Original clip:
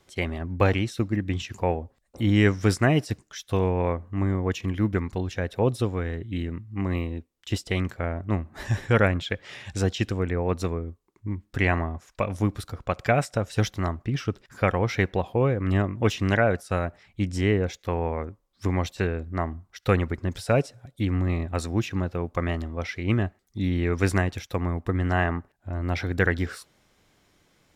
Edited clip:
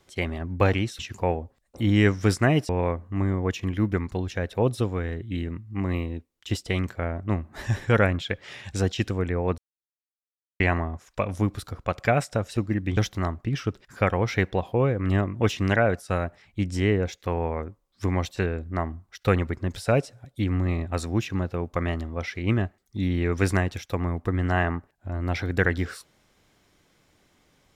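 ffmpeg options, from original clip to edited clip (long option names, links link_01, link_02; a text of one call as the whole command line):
ffmpeg -i in.wav -filter_complex "[0:a]asplit=7[link_01][link_02][link_03][link_04][link_05][link_06][link_07];[link_01]atrim=end=0.992[link_08];[link_02]atrim=start=1.388:end=3.092[link_09];[link_03]atrim=start=3.698:end=10.59,asetpts=PTS-STARTPTS,afade=type=out:start_time=6.888:duration=0.004:curve=hsin[link_10];[link_04]atrim=start=10.59:end=11.61,asetpts=PTS-STARTPTS,volume=0[link_11];[link_05]atrim=start=11.61:end=13.582,asetpts=PTS-STARTPTS,afade=type=in:duration=0.004:curve=hsin[link_12];[link_06]atrim=start=0.988:end=1.392[link_13];[link_07]atrim=start=13.578[link_14];[link_08][link_09]acrossfade=duration=0.004:curve1=hsin:curve2=hsin[link_15];[link_10][link_11][link_12]concat=n=3:v=0:a=1[link_16];[link_15][link_16]acrossfade=duration=0.004:curve1=hsin:curve2=hsin[link_17];[link_17][link_13]acrossfade=duration=0.004:curve1=hsin:curve2=hsin[link_18];[link_18][link_14]acrossfade=duration=0.004:curve1=hsin:curve2=hsin" out.wav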